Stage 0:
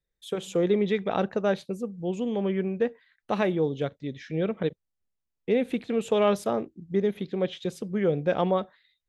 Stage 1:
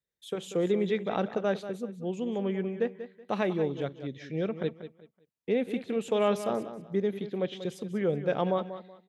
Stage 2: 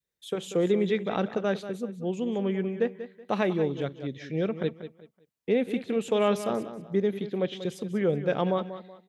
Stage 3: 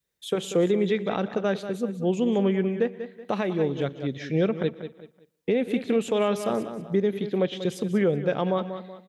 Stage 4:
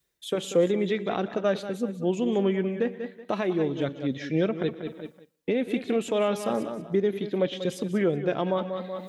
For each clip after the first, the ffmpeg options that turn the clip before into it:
ffmpeg -i in.wav -filter_complex "[0:a]highpass=89,asplit=2[link_01][link_02];[link_02]aecho=0:1:188|376|564:0.251|0.0653|0.017[link_03];[link_01][link_03]amix=inputs=2:normalize=0,volume=-3.5dB" out.wav
ffmpeg -i in.wav -af "adynamicequalizer=threshold=0.01:dfrequency=710:dqfactor=1.1:tfrequency=710:tqfactor=1.1:attack=5:release=100:ratio=0.375:range=2:mode=cutabove:tftype=bell,volume=3dB" out.wav
ffmpeg -i in.wav -af "aecho=1:1:118|236|354:0.0631|0.029|0.0134,alimiter=limit=-19.5dB:level=0:latency=1:release=430,volume=6dB" out.wav
ffmpeg -i in.wav -af "areverse,acompressor=mode=upward:threshold=-26dB:ratio=2.5,areverse,flanger=delay=2.7:depth=1.1:regen=57:speed=0.85:shape=triangular,volume=3.5dB" out.wav

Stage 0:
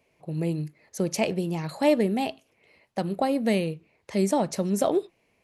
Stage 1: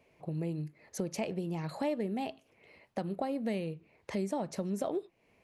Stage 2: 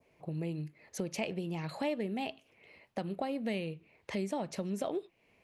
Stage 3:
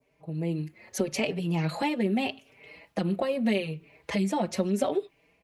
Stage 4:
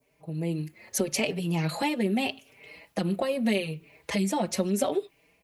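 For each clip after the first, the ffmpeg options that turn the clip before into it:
ffmpeg -i in.wav -af "highshelf=frequency=3700:gain=-7,acompressor=threshold=-39dB:ratio=2.5,volume=2dB" out.wav
ffmpeg -i in.wav -af "adynamicequalizer=threshold=0.001:dfrequency=2800:dqfactor=1.2:tfrequency=2800:tqfactor=1.2:attack=5:release=100:ratio=0.375:range=3.5:mode=boostabove:tftype=bell,volume=-1.5dB" out.wav
ffmpeg -i in.wav -filter_complex "[0:a]dynaudnorm=framelen=190:gausssize=5:maxgain=10.5dB,asplit=2[link_01][link_02];[link_02]adelay=4.7,afreqshift=0.8[link_03];[link_01][link_03]amix=inputs=2:normalize=1,volume=1dB" out.wav
ffmpeg -i in.wav -af "crystalizer=i=1.5:c=0" out.wav

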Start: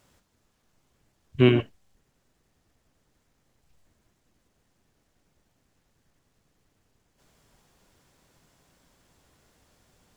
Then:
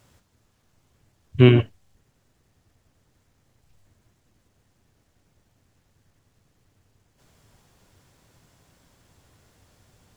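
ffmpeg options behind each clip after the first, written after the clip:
ffmpeg -i in.wav -af "equalizer=frequency=99:width_type=o:width=0.76:gain=8.5,volume=3dB" out.wav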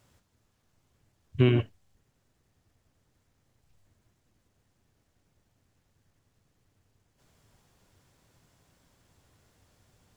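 ffmpeg -i in.wav -af "alimiter=limit=-5dB:level=0:latency=1:release=146,volume=-6dB" out.wav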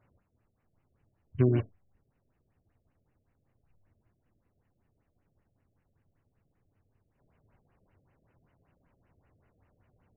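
ffmpeg -i in.wav -af "afftfilt=real='re*lt(b*sr/1024,660*pow(3100/660,0.5+0.5*sin(2*PI*5.2*pts/sr)))':imag='im*lt(b*sr/1024,660*pow(3100/660,0.5+0.5*sin(2*PI*5.2*pts/sr)))':win_size=1024:overlap=0.75,volume=-2.5dB" out.wav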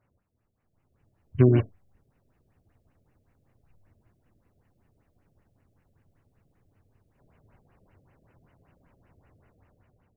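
ffmpeg -i in.wav -af "dynaudnorm=framelen=360:gausssize=5:maxgain=10.5dB,volume=-3.5dB" out.wav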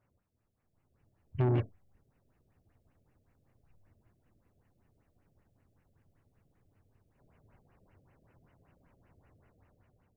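ffmpeg -i in.wav -af "asoftclip=type=tanh:threshold=-20dB,volume=-3.5dB" out.wav

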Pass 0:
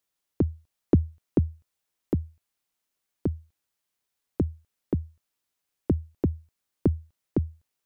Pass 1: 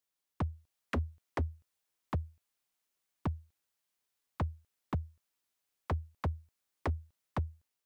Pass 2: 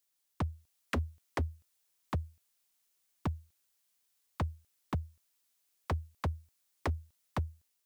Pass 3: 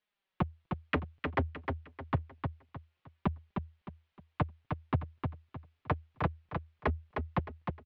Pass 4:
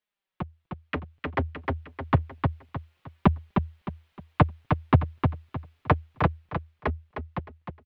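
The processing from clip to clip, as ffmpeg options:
ffmpeg -i in.wav -af "lowshelf=frequency=320:gain=-3,dynaudnorm=framelen=200:gausssize=5:maxgain=3.5dB,aeval=exprs='0.1*(abs(mod(val(0)/0.1+3,4)-2)-1)':channel_layout=same,volume=-5.5dB" out.wav
ffmpeg -i in.wav -af "highshelf=frequency=3200:gain=9" out.wav
ffmpeg -i in.wav -filter_complex "[0:a]lowpass=frequency=3100:width=0.5412,lowpass=frequency=3100:width=1.3066,flanger=delay=4.7:depth=3.5:regen=3:speed=0.29:shape=triangular,asplit=2[link_01][link_02];[link_02]aecho=0:1:308|616|924|1232:0.562|0.174|0.054|0.0168[link_03];[link_01][link_03]amix=inputs=2:normalize=0,volume=7.5dB" out.wav
ffmpeg -i in.wav -af "dynaudnorm=framelen=210:gausssize=17:maxgain=15dB,volume=-2.5dB" out.wav

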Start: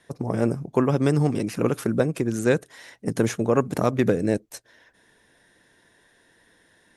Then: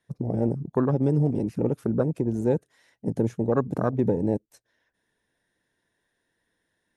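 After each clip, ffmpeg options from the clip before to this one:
ffmpeg -i in.wav -filter_complex "[0:a]afwtdn=0.0562,lowshelf=frequency=190:gain=3.5,asplit=2[link_01][link_02];[link_02]alimiter=limit=-17.5dB:level=0:latency=1:release=177,volume=-0.5dB[link_03];[link_01][link_03]amix=inputs=2:normalize=0,volume=-6dB" out.wav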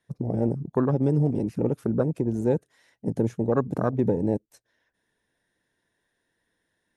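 ffmpeg -i in.wav -af anull out.wav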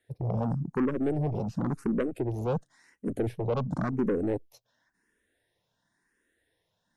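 ffmpeg -i in.wav -filter_complex "[0:a]asoftclip=type=tanh:threshold=-23dB,asplit=2[link_01][link_02];[link_02]afreqshift=0.94[link_03];[link_01][link_03]amix=inputs=2:normalize=1,volume=3dB" out.wav

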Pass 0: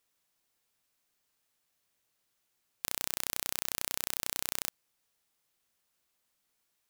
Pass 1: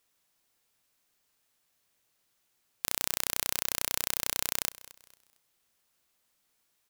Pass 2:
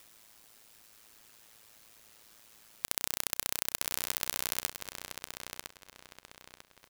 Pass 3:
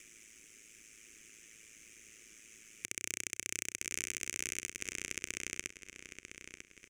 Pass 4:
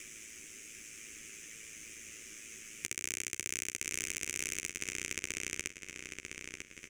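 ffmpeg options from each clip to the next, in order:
ffmpeg -i in.wav -af "aecho=1:1:227|454|681:0.112|0.037|0.0122,volume=3.5dB" out.wav
ffmpeg -i in.wav -filter_complex "[0:a]asplit=2[link_01][link_02];[link_02]adelay=977,lowpass=frequency=4700:poles=1,volume=-4.5dB,asplit=2[link_03][link_04];[link_04]adelay=977,lowpass=frequency=4700:poles=1,volume=0.25,asplit=2[link_05][link_06];[link_06]adelay=977,lowpass=frequency=4700:poles=1,volume=0.25[link_07];[link_01][link_03][link_05][link_07]amix=inputs=4:normalize=0,acompressor=mode=upward:threshold=-39dB:ratio=2.5,aeval=exprs='val(0)*sin(2*PI*55*n/s)':channel_layout=same" out.wav
ffmpeg -i in.wav -af "equalizer=frequency=110:width=4.4:gain=-8,alimiter=limit=-9dB:level=0:latency=1:release=216,firequalizer=gain_entry='entry(170,0);entry(360,4);entry(590,-12);entry(850,-26);entry(1200,-11);entry(2300,8);entry(4200,-15);entry(6200,7);entry(15000,-20)':delay=0.05:min_phase=1,volume=3dB" out.wav
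ffmpeg -i in.wav -filter_complex "[0:a]acompressor=threshold=-50dB:ratio=1.5,asplit=2[link_01][link_02];[link_02]adelay=13,volume=-6dB[link_03];[link_01][link_03]amix=inputs=2:normalize=0,volume=7dB" out.wav

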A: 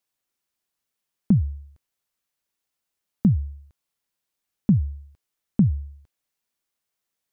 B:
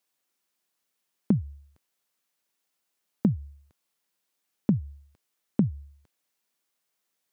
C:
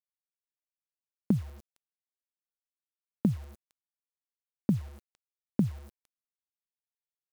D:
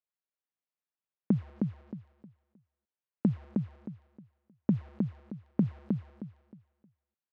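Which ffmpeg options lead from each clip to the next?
ffmpeg -i in.wav -af "highpass=160,acompressor=threshold=-22dB:ratio=6,volume=3dB" out.wav
ffmpeg -i in.wav -af "acrusher=bits=7:mix=0:aa=0.000001,volume=-3dB" out.wav
ffmpeg -i in.wav -af "highpass=110,lowpass=2400,aecho=1:1:312|624|936|1248:0.631|0.17|0.046|0.0124" out.wav

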